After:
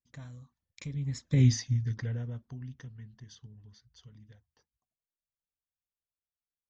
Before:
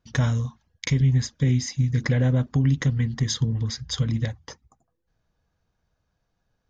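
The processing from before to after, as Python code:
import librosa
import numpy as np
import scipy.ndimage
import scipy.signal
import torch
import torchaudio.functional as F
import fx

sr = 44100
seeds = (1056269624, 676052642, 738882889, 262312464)

y = fx.doppler_pass(x, sr, speed_mps=22, closest_m=2.1, pass_at_s=1.47)
y = fx.dynamic_eq(y, sr, hz=110.0, q=6.6, threshold_db=-47.0, ratio=4.0, max_db=8)
y = F.gain(torch.from_numpy(y), -1.0).numpy()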